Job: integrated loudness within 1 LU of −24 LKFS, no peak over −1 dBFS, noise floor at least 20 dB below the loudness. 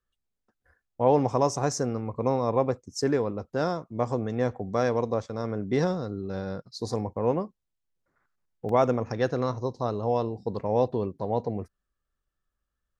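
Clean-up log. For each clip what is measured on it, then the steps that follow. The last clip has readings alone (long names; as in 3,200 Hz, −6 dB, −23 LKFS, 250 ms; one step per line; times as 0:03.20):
number of dropouts 1; longest dropout 2.9 ms; integrated loudness −28.0 LKFS; sample peak −8.5 dBFS; target loudness −24.0 LKFS
→ repair the gap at 0:08.69, 2.9 ms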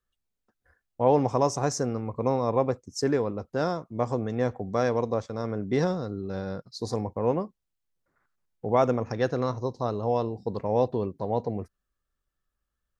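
number of dropouts 0; integrated loudness −28.0 LKFS; sample peak −8.5 dBFS; target loudness −24.0 LKFS
→ level +4 dB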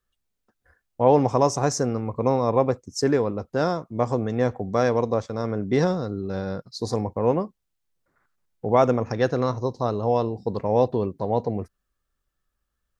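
integrated loudness −24.0 LKFS; sample peak −4.5 dBFS; background noise floor −79 dBFS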